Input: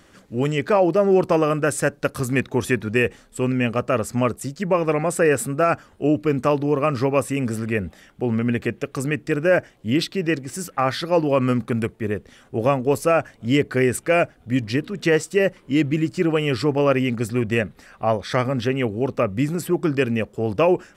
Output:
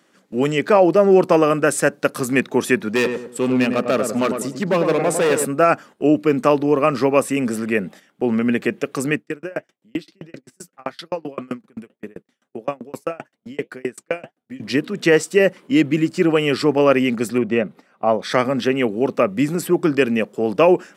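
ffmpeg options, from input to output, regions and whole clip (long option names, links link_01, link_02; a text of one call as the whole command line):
ffmpeg -i in.wav -filter_complex "[0:a]asettb=1/sr,asplit=3[link_01][link_02][link_03];[link_01]atrim=end=2.954[link_04];[link_02]atrim=start=2.95:end=5.45,asetpts=PTS-STARTPTS,afade=type=in:duration=0.004:curve=qsin,afade=type=out:start_time=2.496:duration=0.004:curve=qsin,asoftclip=type=hard:threshold=-18dB,asplit=2[link_05][link_06];[link_06]adelay=102,lowpass=frequency=1100:poles=1,volume=-5dB,asplit=2[link_07][link_08];[link_08]adelay=102,lowpass=frequency=1100:poles=1,volume=0.39,asplit=2[link_09][link_10];[link_10]adelay=102,lowpass=frequency=1100:poles=1,volume=0.39,asplit=2[link_11][link_12];[link_12]adelay=102,lowpass=frequency=1100:poles=1,volume=0.39,asplit=2[link_13][link_14];[link_14]adelay=102,lowpass=frequency=1100:poles=1,volume=0.39[link_15];[link_05][link_07][link_09][link_11][link_13][link_15]amix=inputs=6:normalize=0,atrim=end_sample=110250[link_16];[link_03]atrim=start=5.446[link_17];[link_04][link_16]acrossfade=duration=0.004:curve1=hsin:curve2=qsin[link_18];[link_18][link_17]acrossfade=duration=0.004:curve1=qsin:curve2=hsin,asettb=1/sr,asplit=3[link_19][link_20][link_21];[link_19]atrim=end=9.174[link_22];[link_20]atrim=start=9.17:end=14.6,asetpts=PTS-STARTPTS,afade=type=in:duration=0.004:curve=qsin,afade=type=out:start_time=5.426:duration=0.004:curve=qsin,flanger=delay=2.7:depth=6:regen=-77:speed=1.7:shape=triangular,aeval=exprs='val(0)*pow(10,-33*if(lt(mod(7.7*n/s,1),2*abs(7.7)/1000),1-mod(7.7*n/s,1)/(2*abs(7.7)/1000),(mod(7.7*n/s,1)-2*abs(7.7)/1000)/(1-2*abs(7.7)/1000))/20)':channel_layout=same[link_23];[link_21]atrim=start=14.596[link_24];[link_22][link_23]acrossfade=duration=0.004:curve1=hsin:curve2=qsin[link_25];[link_25][link_24]acrossfade=duration=0.004:curve1=qsin:curve2=hsin,asettb=1/sr,asplit=3[link_26][link_27][link_28];[link_26]atrim=end=17.384[link_29];[link_27]atrim=start=17.38:end=18.22,asetpts=PTS-STARTPTS,afade=type=in:duration=0.004:curve=qsin,afade=type=out:start_time=0.836:duration=0.004:curve=qsin,acrossover=split=5900[link_30][link_31];[link_31]acompressor=threshold=-59dB:ratio=4:attack=1:release=60[link_32];[link_30][link_32]amix=inputs=2:normalize=0,highshelf=frequency=2300:gain=-9.5,bandreject=frequency=1700:width=7.9[link_33];[link_28]atrim=start=18.216[link_34];[link_29][link_33]acrossfade=duration=0.004:curve1=hsin:curve2=qsin[link_35];[link_35][link_34]acrossfade=duration=0.004:curve1=qsin:curve2=hsin,highpass=frequency=170:width=0.5412,highpass=frequency=170:width=1.3066,agate=range=-10dB:threshold=-42dB:ratio=16:detection=peak,volume=4dB" out.wav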